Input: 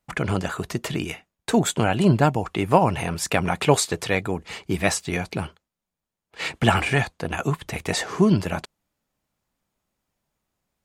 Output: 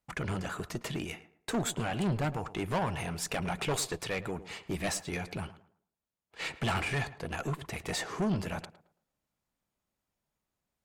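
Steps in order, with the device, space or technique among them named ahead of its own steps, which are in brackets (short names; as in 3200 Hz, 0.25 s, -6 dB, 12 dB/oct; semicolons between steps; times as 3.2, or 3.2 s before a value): rockabilly slapback (tube stage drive 19 dB, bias 0.3; tape echo 0.11 s, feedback 33%, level -13 dB, low-pass 1600 Hz); gain -6.5 dB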